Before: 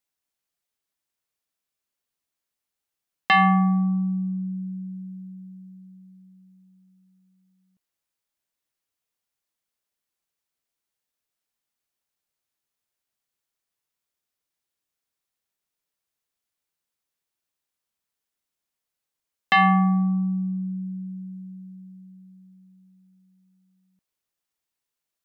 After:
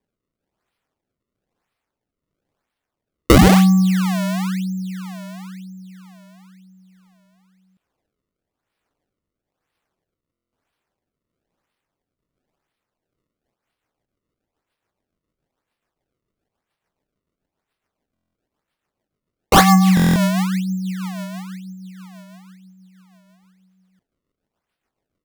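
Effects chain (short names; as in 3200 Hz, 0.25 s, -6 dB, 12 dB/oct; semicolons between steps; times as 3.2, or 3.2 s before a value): rotary speaker horn 1.1 Hz, later 7 Hz, at 12.94; decimation with a swept rate 31×, swing 160% 1 Hz; stuck buffer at 10.32/18.14/19.95, samples 1024, times 8; gain +8.5 dB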